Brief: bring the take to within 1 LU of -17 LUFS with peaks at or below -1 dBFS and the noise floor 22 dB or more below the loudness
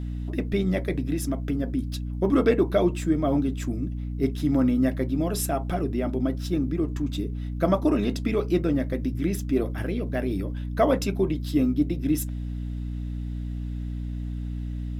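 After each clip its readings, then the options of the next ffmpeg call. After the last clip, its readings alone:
hum 60 Hz; harmonics up to 300 Hz; hum level -28 dBFS; loudness -26.5 LUFS; peak -9.0 dBFS; loudness target -17.0 LUFS
-> -af "bandreject=f=60:t=h:w=4,bandreject=f=120:t=h:w=4,bandreject=f=180:t=h:w=4,bandreject=f=240:t=h:w=4,bandreject=f=300:t=h:w=4"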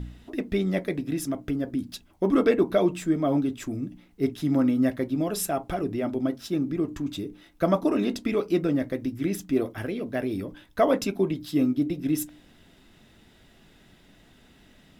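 hum none; loudness -27.0 LUFS; peak -9.5 dBFS; loudness target -17.0 LUFS
-> -af "volume=10dB,alimiter=limit=-1dB:level=0:latency=1"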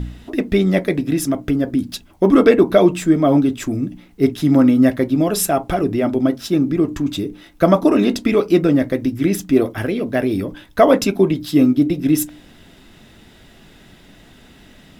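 loudness -17.0 LUFS; peak -1.0 dBFS; noise floor -47 dBFS

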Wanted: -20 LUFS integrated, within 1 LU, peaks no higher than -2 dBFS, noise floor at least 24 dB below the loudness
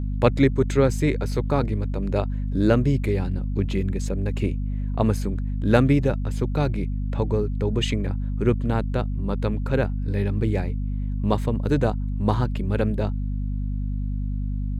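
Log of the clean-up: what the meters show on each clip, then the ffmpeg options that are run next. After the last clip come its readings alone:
hum 50 Hz; harmonics up to 250 Hz; hum level -23 dBFS; loudness -24.5 LUFS; peak -4.5 dBFS; loudness target -20.0 LUFS
-> -af "bandreject=f=50:t=h:w=4,bandreject=f=100:t=h:w=4,bandreject=f=150:t=h:w=4,bandreject=f=200:t=h:w=4,bandreject=f=250:t=h:w=4"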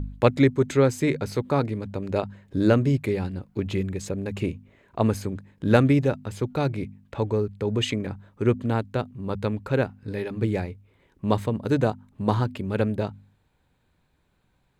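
hum none; loudness -25.5 LUFS; peak -4.5 dBFS; loudness target -20.0 LUFS
-> -af "volume=5.5dB,alimiter=limit=-2dB:level=0:latency=1"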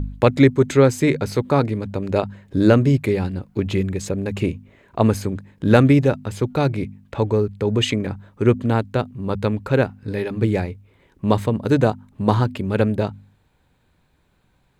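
loudness -20.0 LUFS; peak -2.0 dBFS; noise floor -63 dBFS

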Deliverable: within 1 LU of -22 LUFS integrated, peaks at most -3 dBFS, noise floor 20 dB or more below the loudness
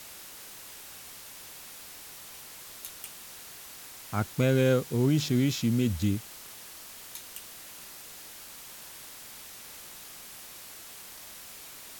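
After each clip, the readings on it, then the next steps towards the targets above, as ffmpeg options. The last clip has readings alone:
noise floor -46 dBFS; noise floor target -54 dBFS; loudness -33.5 LUFS; peak -13.0 dBFS; loudness target -22.0 LUFS
-> -af "afftdn=nr=8:nf=-46"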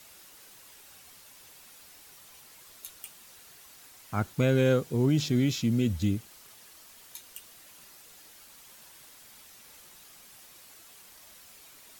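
noise floor -53 dBFS; loudness -27.0 LUFS; peak -13.0 dBFS; loudness target -22.0 LUFS
-> -af "volume=5dB"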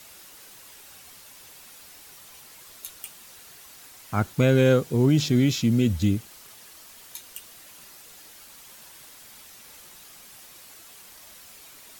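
loudness -22.0 LUFS; peak -8.0 dBFS; noise floor -48 dBFS

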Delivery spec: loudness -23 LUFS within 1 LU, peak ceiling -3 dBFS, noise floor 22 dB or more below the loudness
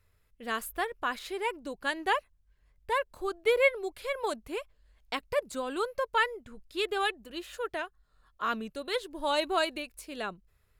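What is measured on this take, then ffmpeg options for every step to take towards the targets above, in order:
loudness -32.0 LUFS; peak -13.0 dBFS; loudness target -23.0 LUFS
-> -af "volume=9dB"

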